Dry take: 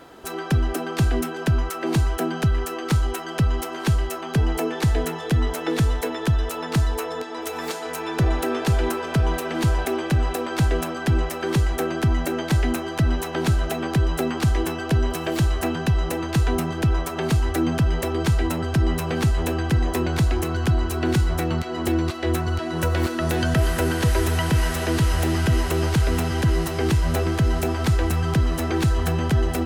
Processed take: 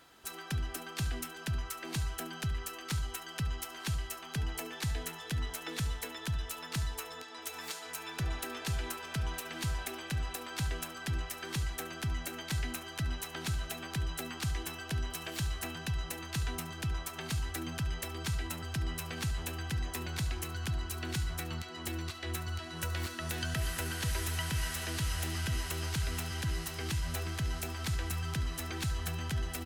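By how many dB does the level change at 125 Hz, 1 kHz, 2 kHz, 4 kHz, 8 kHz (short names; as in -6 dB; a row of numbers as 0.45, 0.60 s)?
-14.5, -15.0, -10.5, -7.0, -6.0 dB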